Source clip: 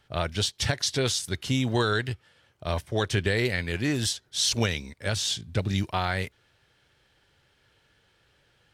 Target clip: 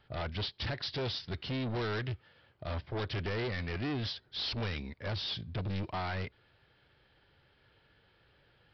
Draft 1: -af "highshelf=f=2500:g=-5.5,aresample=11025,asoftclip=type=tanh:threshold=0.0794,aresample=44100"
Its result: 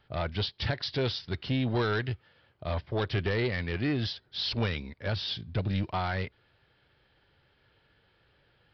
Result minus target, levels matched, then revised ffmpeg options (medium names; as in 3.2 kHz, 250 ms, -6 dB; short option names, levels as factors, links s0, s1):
saturation: distortion -8 dB
-af "highshelf=f=2500:g=-5.5,aresample=11025,asoftclip=type=tanh:threshold=0.0251,aresample=44100"